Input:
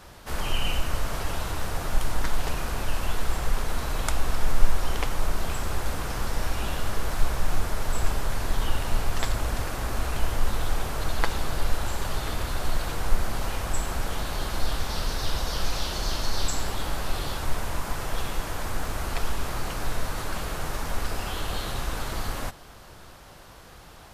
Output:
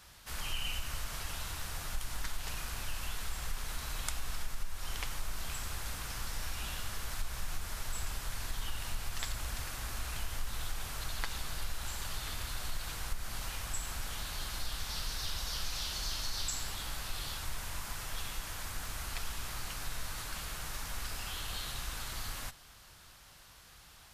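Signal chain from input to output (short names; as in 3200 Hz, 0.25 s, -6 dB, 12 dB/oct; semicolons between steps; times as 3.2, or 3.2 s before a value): passive tone stack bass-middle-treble 5-5-5; compressor 4:1, threshold -33 dBFS, peak gain reduction 10 dB; gain +3 dB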